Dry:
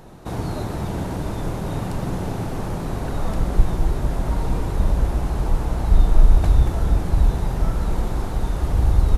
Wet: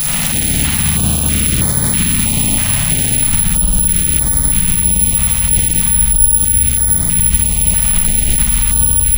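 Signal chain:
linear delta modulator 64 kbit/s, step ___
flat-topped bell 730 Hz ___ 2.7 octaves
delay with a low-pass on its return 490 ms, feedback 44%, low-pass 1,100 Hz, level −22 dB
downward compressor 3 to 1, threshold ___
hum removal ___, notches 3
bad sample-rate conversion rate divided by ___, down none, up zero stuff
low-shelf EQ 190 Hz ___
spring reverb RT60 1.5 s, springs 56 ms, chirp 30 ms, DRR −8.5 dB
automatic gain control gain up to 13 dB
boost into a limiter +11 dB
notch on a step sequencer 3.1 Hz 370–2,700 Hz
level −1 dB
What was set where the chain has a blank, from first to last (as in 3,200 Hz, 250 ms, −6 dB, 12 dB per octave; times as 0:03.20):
−23.5 dBFS, −14 dB, −17 dBFS, 109.5 Hz, 4×, −8 dB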